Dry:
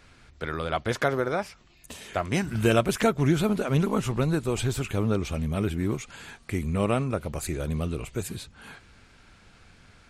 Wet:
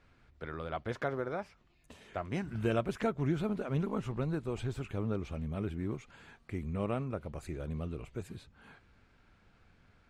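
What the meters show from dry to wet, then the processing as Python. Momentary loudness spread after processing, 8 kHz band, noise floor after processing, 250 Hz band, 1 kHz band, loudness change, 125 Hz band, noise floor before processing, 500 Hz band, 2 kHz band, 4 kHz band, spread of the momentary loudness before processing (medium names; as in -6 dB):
12 LU, -20.5 dB, -66 dBFS, -9.0 dB, -10.0 dB, -9.5 dB, -9.0 dB, -56 dBFS, -9.5 dB, -12.0 dB, -15.0 dB, 16 LU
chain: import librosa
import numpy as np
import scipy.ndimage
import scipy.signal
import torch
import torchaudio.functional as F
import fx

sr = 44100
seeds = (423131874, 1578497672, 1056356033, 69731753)

y = fx.lowpass(x, sr, hz=1900.0, slope=6)
y = F.gain(torch.from_numpy(y), -9.0).numpy()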